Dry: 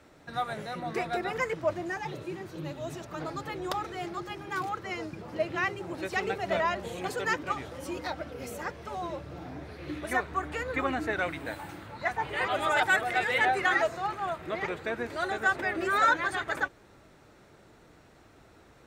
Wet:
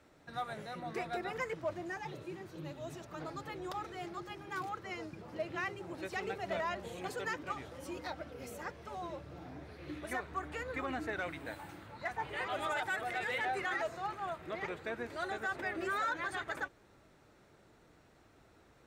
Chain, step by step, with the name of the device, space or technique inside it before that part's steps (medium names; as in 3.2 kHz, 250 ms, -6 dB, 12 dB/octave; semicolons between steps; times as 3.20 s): limiter into clipper (peak limiter -19.5 dBFS, peak gain reduction 6 dB; hard clipper -21 dBFS, distortion -32 dB); trim -7 dB